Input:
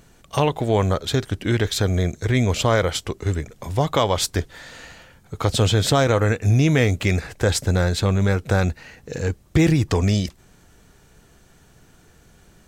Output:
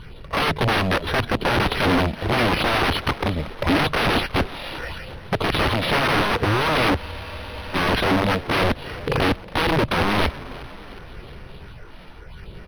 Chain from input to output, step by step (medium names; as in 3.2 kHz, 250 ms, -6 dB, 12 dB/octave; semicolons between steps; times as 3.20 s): CVSD coder 32 kbps; de-esser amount 80%; treble shelf 4.8 kHz +7 dB; comb 2 ms, depth 45%; in parallel at -3 dB: compression 4:1, threshold -31 dBFS, peak gain reduction 15.5 dB; on the sum: saturation -12.5 dBFS, distortion -16 dB; phase shifter stages 6, 0.81 Hz, lowest notch 100–2800 Hz; integer overflow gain 21 dB; on a send: frequency-shifting echo 363 ms, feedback 58%, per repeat +51 Hz, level -18.5 dB; on the sum: spectral freeze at 7.00 s, 0.75 s; decimation joined by straight lines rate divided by 6×; trim +7.5 dB